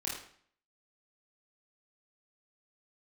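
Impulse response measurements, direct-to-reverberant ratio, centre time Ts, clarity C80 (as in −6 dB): −5.5 dB, 44 ms, 7.0 dB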